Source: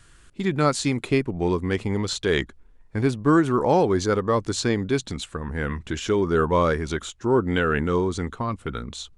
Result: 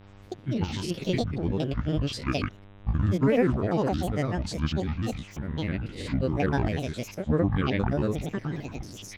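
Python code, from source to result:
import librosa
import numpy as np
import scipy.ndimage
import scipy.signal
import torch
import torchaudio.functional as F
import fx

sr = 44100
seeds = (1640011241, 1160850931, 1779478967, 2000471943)

y = fx.spec_steps(x, sr, hold_ms=100)
y = fx.graphic_eq(y, sr, hz=(125, 500, 1000, 8000), db=(4, -6, -7, -9))
y = fx.granulator(y, sr, seeds[0], grain_ms=100.0, per_s=20.0, spray_ms=100.0, spread_st=12)
y = fx.dmg_buzz(y, sr, base_hz=100.0, harmonics=39, level_db=-51.0, tilt_db=-6, odd_only=False)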